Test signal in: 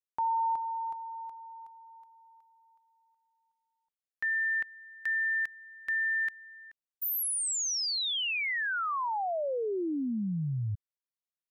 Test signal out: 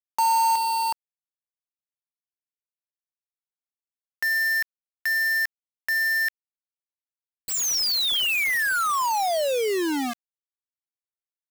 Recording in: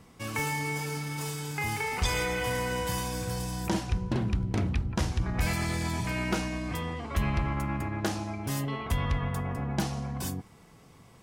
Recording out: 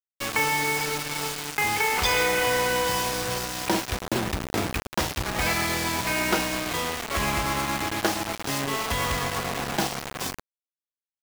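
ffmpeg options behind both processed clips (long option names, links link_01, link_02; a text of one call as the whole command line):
ffmpeg -i in.wav -filter_complex "[0:a]acrossover=split=300 7100:gain=0.224 1 0.112[link_01][link_02][link_03];[link_01][link_02][link_03]amix=inputs=3:normalize=0,acrusher=bits=5:mix=0:aa=0.000001,volume=8dB" out.wav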